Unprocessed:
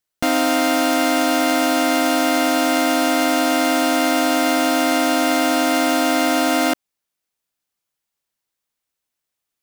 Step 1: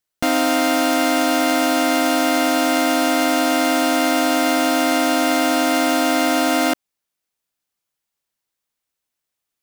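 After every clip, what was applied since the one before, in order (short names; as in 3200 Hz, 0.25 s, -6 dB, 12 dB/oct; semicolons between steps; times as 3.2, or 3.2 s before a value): nothing audible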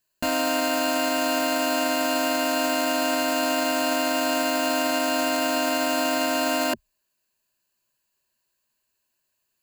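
ripple EQ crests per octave 1.4, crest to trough 11 dB; limiter -18.5 dBFS, peak gain reduction 11 dB; gain +3 dB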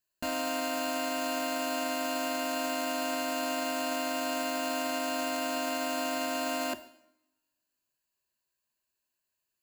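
two-slope reverb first 0.72 s, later 1.8 s, from -28 dB, DRR 11 dB; gain -8.5 dB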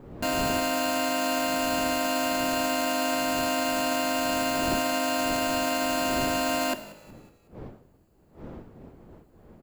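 wind noise 360 Hz -48 dBFS; frequency-shifting echo 0.185 s, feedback 48%, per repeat -53 Hz, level -20 dB; gain +5.5 dB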